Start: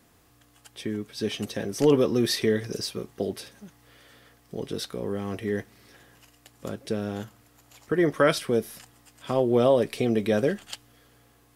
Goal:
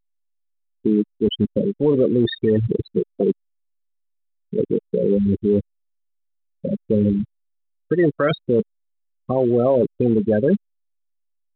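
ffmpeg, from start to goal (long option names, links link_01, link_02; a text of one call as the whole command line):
ffmpeg -i in.wav -af "afftfilt=real='re*gte(hypot(re,im),0.126)':imag='im*gte(hypot(re,im),0.126)':win_size=1024:overlap=0.75,lowshelf=frequency=180:gain=2.5,areverse,acompressor=threshold=-28dB:ratio=12,areverse,alimiter=level_in=23.5dB:limit=-1dB:release=50:level=0:latency=1,volume=-7.5dB" -ar 8000 -c:a pcm_alaw out.wav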